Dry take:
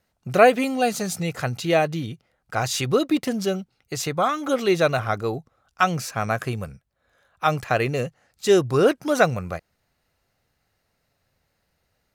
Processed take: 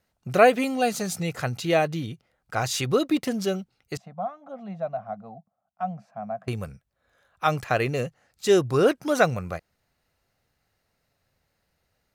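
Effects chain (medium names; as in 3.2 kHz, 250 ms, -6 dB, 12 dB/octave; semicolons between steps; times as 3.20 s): 3.97–6.48 s: two resonant band-passes 370 Hz, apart 1.8 oct; trim -2 dB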